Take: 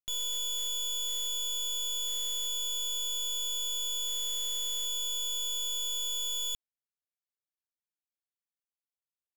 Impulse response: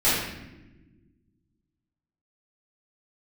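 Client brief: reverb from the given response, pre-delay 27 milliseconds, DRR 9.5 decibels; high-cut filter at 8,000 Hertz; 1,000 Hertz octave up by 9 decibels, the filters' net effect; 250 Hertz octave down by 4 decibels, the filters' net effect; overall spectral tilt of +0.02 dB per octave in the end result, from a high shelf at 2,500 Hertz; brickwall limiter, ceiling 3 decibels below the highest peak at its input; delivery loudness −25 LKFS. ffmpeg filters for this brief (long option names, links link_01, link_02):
-filter_complex "[0:a]lowpass=8000,equalizer=frequency=250:width_type=o:gain=-7,equalizer=frequency=1000:width_type=o:gain=8.5,highshelf=frequency=2500:gain=7,alimiter=level_in=3.5dB:limit=-24dB:level=0:latency=1,volume=-3.5dB,asplit=2[link_01][link_02];[1:a]atrim=start_sample=2205,adelay=27[link_03];[link_02][link_03]afir=irnorm=-1:irlink=0,volume=-26dB[link_04];[link_01][link_04]amix=inputs=2:normalize=0,volume=4dB"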